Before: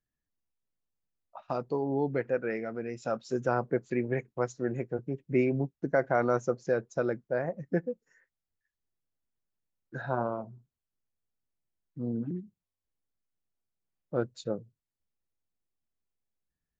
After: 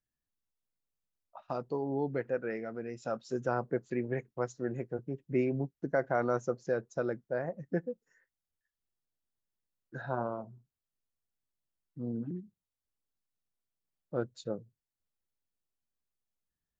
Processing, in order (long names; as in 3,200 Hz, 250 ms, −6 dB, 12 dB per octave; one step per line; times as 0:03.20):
parametric band 2,300 Hz −4 dB 0.25 octaves
level −3.5 dB